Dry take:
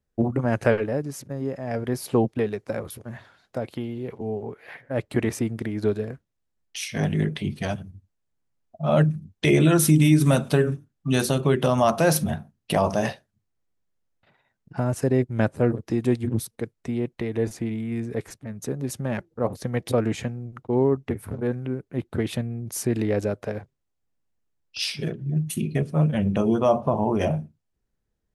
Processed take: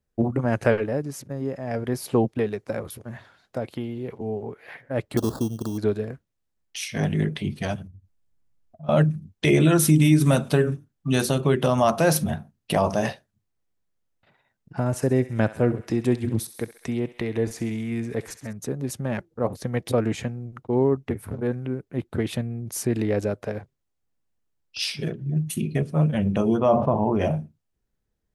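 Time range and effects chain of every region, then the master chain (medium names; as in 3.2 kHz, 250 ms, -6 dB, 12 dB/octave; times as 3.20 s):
5.17–5.78 s: sample-rate reducer 3 kHz + Butterworth band-stop 2.2 kHz, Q 0.91
7.87–8.89 s: bass shelf 130 Hz +10.5 dB + compression 2:1, threshold -50 dBFS
14.86–18.53 s: thinning echo 66 ms, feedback 63%, high-pass 710 Hz, level -14 dB + tape noise reduction on one side only encoder only
26.57–27.25 s: tone controls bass +1 dB, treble -11 dB + decay stretcher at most 73 dB/s
whole clip: none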